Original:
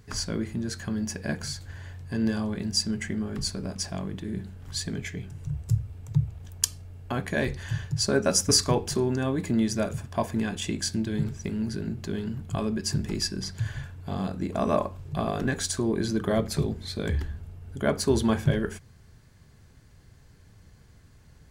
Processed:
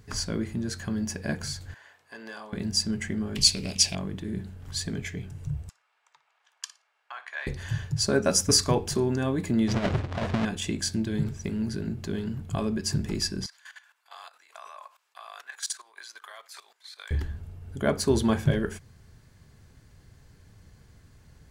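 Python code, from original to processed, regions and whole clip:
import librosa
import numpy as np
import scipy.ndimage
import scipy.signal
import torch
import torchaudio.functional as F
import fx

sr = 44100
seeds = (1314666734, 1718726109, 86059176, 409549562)

y = fx.chain(x, sr, fx.highpass(hz=800.0, slope=12),
    fx.high_shelf(hz=2800.0, db=-7.5), at=(1.74, 2.53))
y = fx.chain(y, sr, fx.high_shelf_res(hz=1900.0, db=10.5, q=3.0),
    fx.doppler_dist(depth_ms=0.14), at=(3.35, 3.95))
y = fx.chain(y, sr, fx.highpass(hz=1000.0, slope=24),
    fx.spacing_loss(db_at_10k=21),
    fx.room_flutter(wall_m=10.0, rt60_s=0.23), at=(5.69, 7.47))
y = fx.chain(y, sr, fx.halfwave_hold(),
    fx.lowpass(hz=3800.0, slope=12),
    fx.over_compress(threshold_db=-24.0, ratio=-0.5), at=(9.68, 10.45))
y = fx.chain(y, sr, fx.highpass(hz=980.0, slope=24),
    fx.level_steps(step_db=15), at=(13.46, 17.11))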